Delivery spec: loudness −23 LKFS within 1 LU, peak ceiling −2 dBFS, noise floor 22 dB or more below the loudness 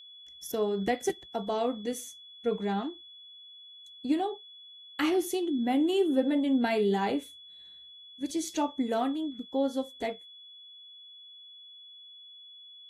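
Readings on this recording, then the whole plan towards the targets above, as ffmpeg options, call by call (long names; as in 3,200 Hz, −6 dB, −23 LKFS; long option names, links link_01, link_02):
interfering tone 3,400 Hz; level of the tone −48 dBFS; integrated loudness −30.0 LKFS; sample peak −14.5 dBFS; target loudness −23.0 LKFS
→ -af "bandreject=frequency=3400:width=30"
-af "volume=7dB"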